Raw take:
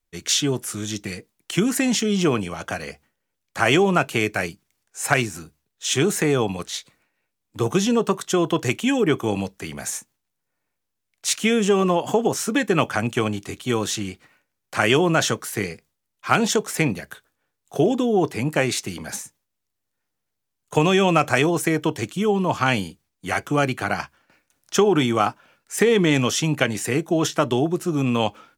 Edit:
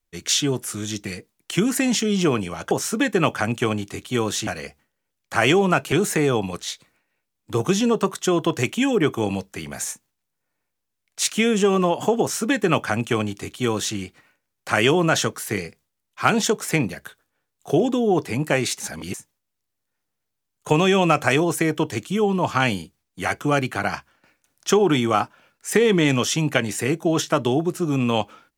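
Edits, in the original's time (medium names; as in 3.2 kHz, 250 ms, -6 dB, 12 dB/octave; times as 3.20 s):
4.16–5.98 s: delete
12.26–14.02 s: copy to 2.71 s
18.86–19.20 s: reverse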